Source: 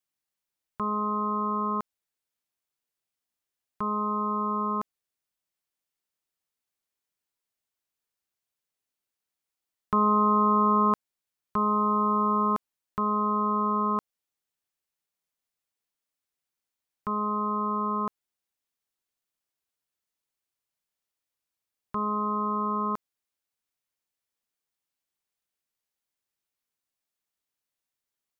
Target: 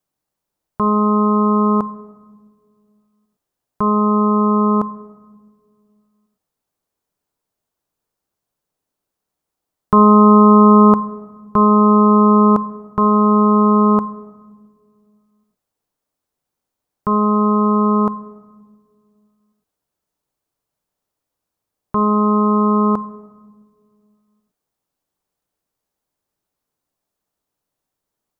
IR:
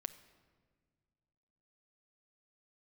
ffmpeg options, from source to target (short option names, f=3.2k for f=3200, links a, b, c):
-filter_complex "[0:a]asplit=2[a][b];[b]lowpass=1.2k[c];[1:a]atrim=start_sample=2205[d];[c][d]afir=irnorm=-1:irlink=0,volume=9dB[e];[a][e]amix=inputs=2:normalize=0,volume=5dB"